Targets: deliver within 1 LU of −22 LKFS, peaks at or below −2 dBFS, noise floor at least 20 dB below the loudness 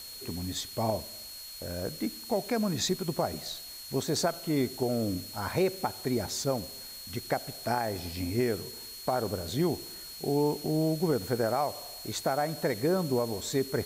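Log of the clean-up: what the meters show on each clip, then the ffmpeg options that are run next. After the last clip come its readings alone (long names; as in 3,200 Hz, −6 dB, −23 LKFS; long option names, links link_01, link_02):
interfering tone 4,300 Hz; level of the tone −44 dBFS; background noise floor −44 dBFS; target noise floor −52 dBFS; integrated loudness −31.5 LKFS; sample peak −14.5 dBFS; target loudness −22.0 LKFS
→ -af "bandreject=frequency=4300:width=30"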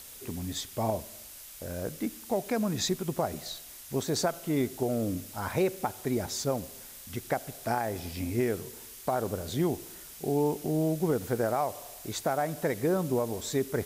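interfering tone none found; background noise floor −47 dBFS; target noise floor −52 dBFS
→ -af "afftdn=noise_reduction=6:noise_floor=-47"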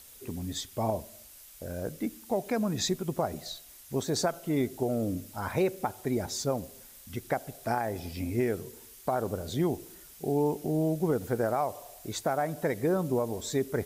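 background noise floor −52 dBFS; integrated loudness −31.5 LKFS; sample peak −14.5 dBFS; target loudness −22.0 LKFS
→ -af "volume=9.5dB"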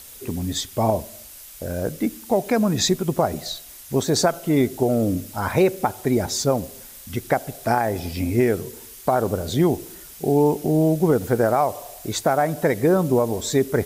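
integrated loudness −22.0 LKFS; sample peak −5.0 dBFS; background noise floor −42 dBFS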